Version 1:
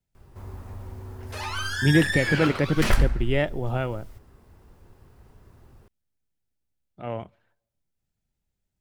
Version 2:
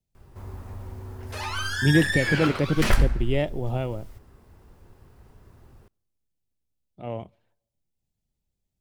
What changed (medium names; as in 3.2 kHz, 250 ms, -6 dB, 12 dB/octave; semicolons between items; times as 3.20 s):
speech: add peaking EQ 1.5 kHz -11 dB 0.88 oct; background: send on